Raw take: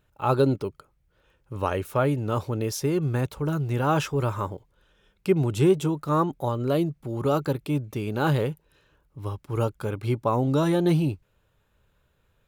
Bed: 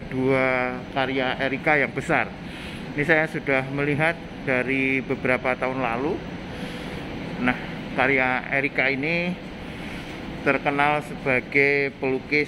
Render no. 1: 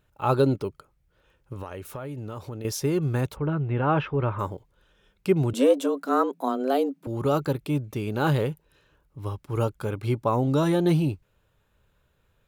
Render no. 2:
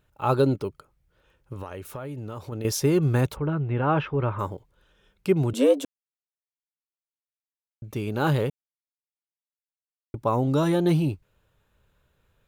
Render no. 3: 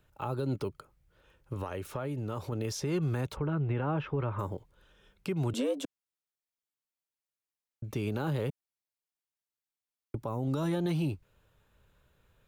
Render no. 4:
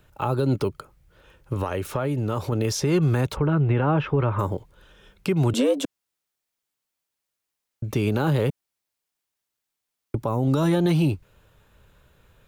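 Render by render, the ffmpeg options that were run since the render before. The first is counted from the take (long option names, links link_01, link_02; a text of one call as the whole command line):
ffmpeg -i in.wav -filter_complex "[0:a]asettb=1/sr,asplit=3[link_01][link_02][link_03];[link_01]atrim=end=1.534[link_04];[link_02]atrim=start=1.53:end=2.65,asetpts=PTS-STARTPTS,afade=type=in:duration=0.004:curve=qsin,afade=type=out:start_time=1.116:duration=0.004:curve=qsin,acompressor=threshold=-32dB:ratio=8:attack=3.2:release=140:knee=1:detection=peak[link_05];[link_03]atrim=start=2.646[link_06];[link_04][link_05]acrossfade=duration=0.004:curve1=hsin:curve2=qsin[link_07];[link_07][link_06]acrossfade=duration=0.004:curve1=qsin:curve2=hsin,asplit=3[link_08][link_09][link_10];[link_08]afade=type=out:start_time=3.35:duration=0.02[link_11];[link_09]lowpass=frequency=2800:width=0.5412,lowpass=frequency=2800:width=1.3066,afade=type=in:start_time=3.35:duration=0.02,afade=type=out:start_time=4.38:duration=0.02[link_12];[link_10]afade=type=in:start_time=4.38:duration=0.02[link_13];[link_11][link_12][link_13]amix=inputs=3:normalize=0,asettb=1/sr,asplit=3[link_14][link_15][link_16];[link_14]atrim=end=5.534[link_17];[link_15]atrim=start=5.53:end=7.07,asetpts=PTS-STARTPTS,afade=type=in:duration=0.004:curve=qsin,afade=type=out:start_time=1.536:duration=0.004:curve=qsin,afreqshift=130[link_18];[link_16]atrim=start=7.066[link_19];[link_17][link_18]acrossfade=duration=0.004:curve1=hsin:curve2=qsin[link_20];[link_20][link_19]acrossfade=duration=0.004:curve1=qsin:curve2=hsin" out.wav
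ffmpeg -i in.wav -filter_complex "[0:a]asplit=7[link_01][link_02][link_03][link_04][link_05][link_06][link_07];[link_01]atrim=end=2.522[link_08];[link_02]atrim=start=2.518:end=3.402,asetpts=PTS-STARTPTS,volume=3.5dB[link_09];[link_03]atrim=start=3.398:end=5.85,asetpts=PTS-STARTPTS,afade=type=out:start_time=2.448:duration=0.004:curve=hsin[link_10];[link_04]atrim=start=5.85:end=7.82,asetpts=PTS-STARTPTS,volume=0[link_11];[link_05]atrim=start=7.82:end=8.5,asetpts=PTS-STARTPTS,afade=type=in:duration=0.004:curve=hsin,afade=type=out:start_time=0.676:duration=0.004:curve=hsin[link_12];[link_06]atrim=start=8.5:end=10.14,asetpts=PTS-STARTPTS,volume=0[link_13];[link_07]atrim=start=10.14,asetpts=PTS-STARTPTS,afade=type=in:duration=0.004:curve=hsin[link_14];[link_08][link_09]acrossfade=duration=0.004:curve1=hsin:curve2=hsin[link_15];[link_10][link_11][link_12][link_13][link_14]concat=n=5:v=0:a=1[link_16];[link_15][link_16]acrossfade=duration=0.004:curve1=hsin:curve2=hsin" out.wav
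ffmpeg -i in.wav -filter_complex "[0:a]acrossover=split=220|670|7800[link_01][link_02][link_03][link_04];[link_01]acompressor=threshold=-27dB:ratio=4[link_05];[link_02]acompressor=threshold=-30dB:ratio=4[link_06];[link_03]acompressor=threshold=-34dB:ratio=4[link_07];[link_04]acompressor=threshold=-54dB:ratio=4[link_08];[link_05][link_06][link_07][link_08]amix=inputs=4:normalize=0,alimiter=limit=-23dB:level=0:latency=1:release=184" out.wav
ffmpeg -i in.wav -af "volume=10dB" out.wav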